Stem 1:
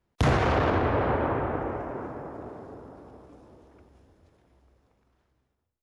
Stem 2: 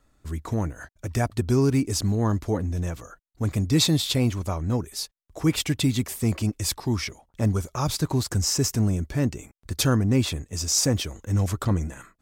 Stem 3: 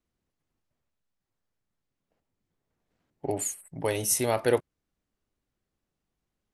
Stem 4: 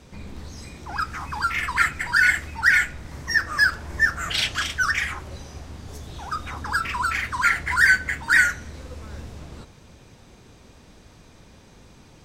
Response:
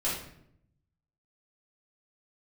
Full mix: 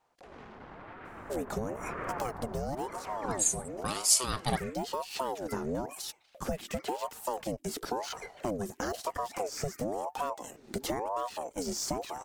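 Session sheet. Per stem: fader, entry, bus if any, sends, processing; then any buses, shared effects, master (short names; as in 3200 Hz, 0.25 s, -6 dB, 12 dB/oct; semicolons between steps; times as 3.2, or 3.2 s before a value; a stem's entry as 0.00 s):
-3.0 dB, 0.00 s, bus A, no send, negative-ratio compressor -37 dBFS, ratio -1
+3.0 dB, 1.05 s, bus A, no send, de-esser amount 80%; high shelf 7100 Hz +7 dB; auto duck -14 dB, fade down 1.35 s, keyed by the third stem
-5.5 dB, 0.00 s, no bus, no send, band shelf 5600 Hz +13.5 dB
-13.0 dB, 1.90 s, bus A, no send, compressor, threshold -21 dBFS, peak gain reduction 9.5 dB; dB-linear tremolo 0.79 Hz, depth 27 dB
bus A: 0.0 dB, compressor 10:1, threshold -28 dBFS, peak gain reduction 15.5 dB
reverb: off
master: vibrato 5.5 Hz 9.8 cents; ring modulator with a swept carrier 570 Hz, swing 50%, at 0.98 Hz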